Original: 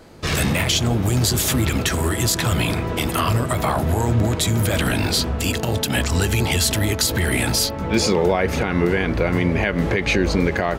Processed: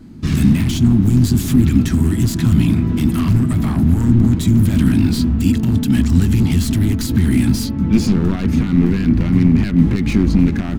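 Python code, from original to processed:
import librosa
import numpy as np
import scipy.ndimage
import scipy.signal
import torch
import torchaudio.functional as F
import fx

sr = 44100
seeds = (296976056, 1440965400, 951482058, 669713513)

y = np.minimum(x, 2.0 * 10.0 ** (-16.5 / 20.0) - x)
y = fx.low_shelf_res(y, sr, hz=360.0, db=13.0, q=3.0)
y = y * 10.0 ** (-6.5 / 20.0)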